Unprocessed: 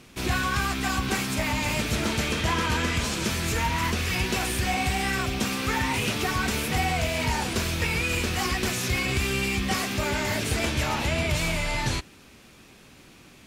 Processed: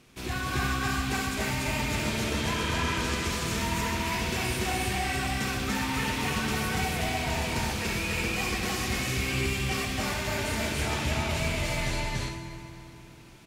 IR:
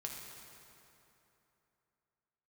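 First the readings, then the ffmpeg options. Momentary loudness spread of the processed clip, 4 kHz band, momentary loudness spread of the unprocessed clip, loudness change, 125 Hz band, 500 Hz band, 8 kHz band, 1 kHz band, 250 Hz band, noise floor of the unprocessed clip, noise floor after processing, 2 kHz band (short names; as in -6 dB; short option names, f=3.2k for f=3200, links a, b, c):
2 LU, -3.0 dB, 2 LU, -3.0 dB, -2.5 dB, -2.5 dB, -3.0 dB, -3.0 dB, -2.5 dB, -52 dBFS, -47 dBFS, -3.0 dB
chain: -filter_complex "[0:a]aecho=1:1:198.3|288.6:0.316|1,asplit=2[a][b];[1:a]atrim=start_sample=2205,adelay=68[c];[b][c]afir=irnorm=-1:irlink=0,volume=-3dB[d];[a][d]amix=inputs=2:normalize=0,volume=-7.5dB"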